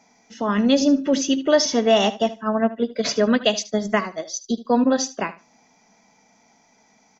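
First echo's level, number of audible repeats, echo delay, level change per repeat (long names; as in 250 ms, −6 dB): −16.0 dB, 2, 75 ms, −15.5 dB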